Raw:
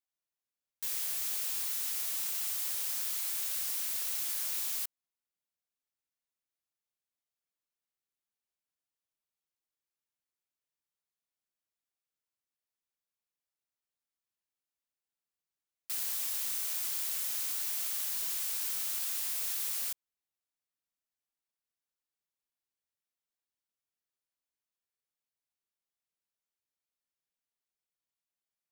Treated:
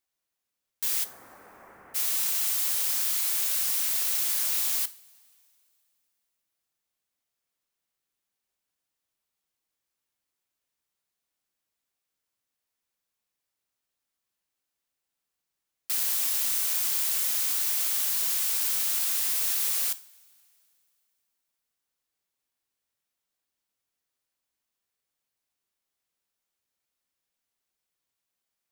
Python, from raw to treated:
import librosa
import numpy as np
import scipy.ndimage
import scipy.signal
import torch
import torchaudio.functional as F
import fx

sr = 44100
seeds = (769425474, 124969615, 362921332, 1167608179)

y = fx.bessel_lowpass(x, sr, hz=1000.0, order=8, at=(1.03, 1.94), fade=0.02)
y = fx.rev_double_slope(y, sr, seeds[0], early_s=0.37, late_s=2.8, knee_db=-21, drr_db=12.0)
y = y * 10.0 ** (7.5 / 20.0)